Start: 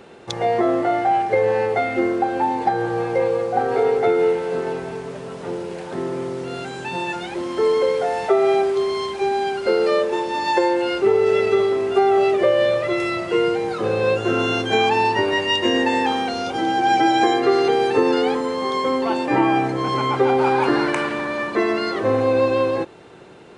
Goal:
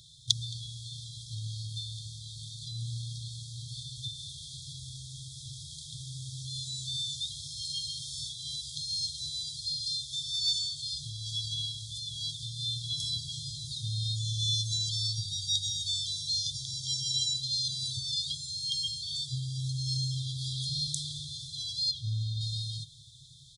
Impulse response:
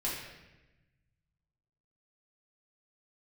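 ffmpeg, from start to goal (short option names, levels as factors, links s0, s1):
-filter_complex "[0:a]asettb=1/sr,asplit=3[s0][s1][s2];[s0]atrim=end=21.914[s3];[s1]atrim=start=21.91:end=22.41,asetpts=PTS-STARTPTS,afade=t=in:d=0.004:c=qsin,afade=t=out:st=0.496:d=0.004:c=qsin,aemphasis=mode=reproduction:type=50fm[s4];[s2]atrim=start=22.406[s5];[s3][s4]acrossfade=d=0.004:c1=hsin:c2=qsin[s6];[s6][s5]acrossfade=d=0.004:c1=qsin:c2=hsin,afftfilt=real='re*(1-between(b*sr/4096,160,3200))':imag='im*(1-between(b*sr/4096,160,3200))':win_size=4096:overlap=0.75,lowshelf=f=440:g=-7,asplit=2[s7][s8];[s8]aecho=0:1:219:0.0794[s9];[s7][s9]amix=inputs=2:normalize=0,volume=1.88"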